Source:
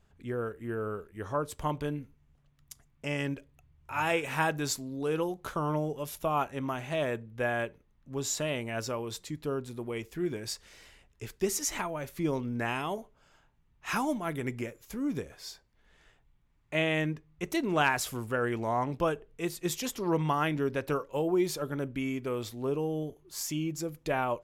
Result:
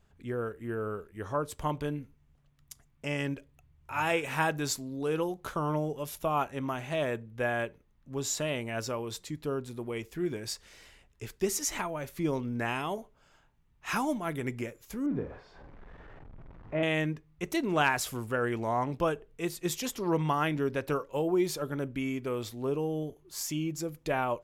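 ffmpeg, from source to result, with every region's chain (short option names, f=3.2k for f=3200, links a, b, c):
-filter_complex "[0:a]asettb=1/sr,asplit=3[a][b][c];[a]atrim=end=15.064[d];[b]atrim=start=15.06:end=16.83,asetpts=PTS-STARTPTS,afade=t=in:d=0.004:c=qsin,afade=t=out:st=1.766:d=0.004:c=qsin,aeval=exprs='val(0)+0.5*0.00708*sgn(val(0))':c=same,lowpass=1.2k,asplit=2[e][f];[f]adelay=47,volume=-7dB[g];[e][g]amix=inputs=2:normalize=0,atrim=end_sample=78057[h];[c]atrim=start=16.826[i];[d][h]acrossfade=d=0.004:c1=hsin:c2=qsin[j];[j][i]acrossfade=d=0.004:c1=qsin:c2=hsin"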